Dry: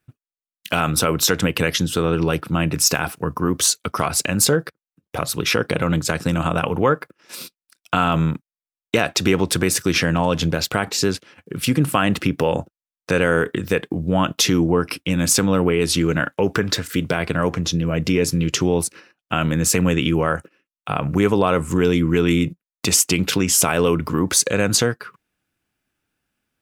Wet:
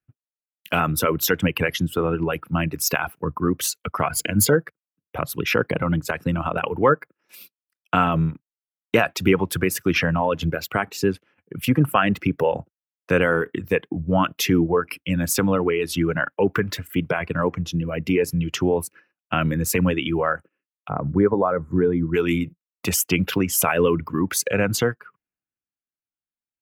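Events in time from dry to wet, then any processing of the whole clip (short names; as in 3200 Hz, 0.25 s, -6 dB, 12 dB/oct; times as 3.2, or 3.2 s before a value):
4.1–4.5 ripple EQ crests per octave 1.8, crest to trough 10 dB
20.89–22.14 running mean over 16 samples
whole clip: reverb removal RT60 2 s; band shelf 5900 Hz -10.5 dB; three-band expander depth 40%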